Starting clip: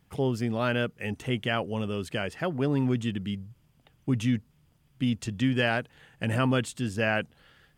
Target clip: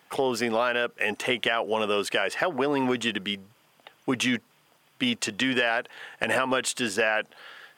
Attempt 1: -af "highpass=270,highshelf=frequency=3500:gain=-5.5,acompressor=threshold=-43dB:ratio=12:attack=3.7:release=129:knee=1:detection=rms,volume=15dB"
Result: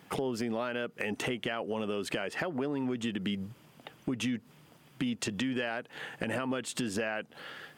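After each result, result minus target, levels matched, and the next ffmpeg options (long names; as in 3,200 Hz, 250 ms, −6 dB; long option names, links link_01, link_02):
downward compressor: peak gain reduction +11 dB; 250 Hz band +4.5 dB
-af "highpass=270,highshelf=frequency=3500:gain=-5.5,acompressor=threshold=-33dB:ratio=12:attack=3.7:release=129:knee=1:detection=rms,volume=15dB"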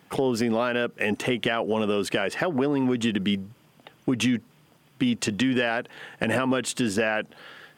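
250 Hz band +4.5 dB
-af "highpass=570,highshelf=frequency=3500:gain=-5.5,acompressor=threshold=-33dB:ratio=12:attack=3.7:release=129:knee=1:detection=rms,volume=15dB"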